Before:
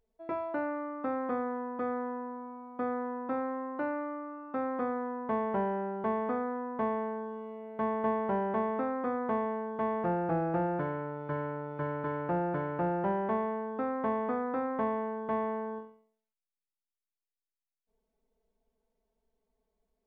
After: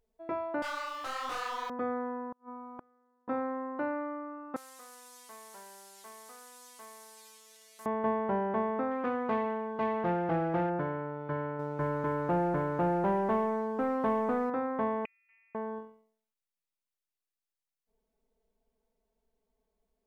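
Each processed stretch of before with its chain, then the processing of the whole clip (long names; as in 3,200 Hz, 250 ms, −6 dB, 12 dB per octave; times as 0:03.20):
0:00.62–0:01.70: high-pass filter 1,100 Hz + leveller curve on the samples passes 5 + micro pitch shift up and down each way 42 cents
0:02.32–0:03.28: parametric band 1,200 Hz +7.5 dB 0.27 octaves + gate with flip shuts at −32 dBFS, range −36 dB
0:04.56–0:07.86: linear delta modulator 64 kbit/s, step −41.5 dBFS + first difference + highs frequency-modulated by the lows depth 0.44 ms
0:08.91–0:10.70: phase distortion by the signal itself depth 0.097 ms + high-shelf EQ 2,900 Hz +8 dB
0:11.59–0:14.50: high-shelf EQ 3,100 Hz −11 dB + leveller curve on the samples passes 1
0:15.05–0:15.55: gate with flip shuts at −32 dBFS, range −36 dB + comb filter 2.1 ms, depth 49% + voice inversion scrambler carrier 2,900 Hz
whole clip: no processing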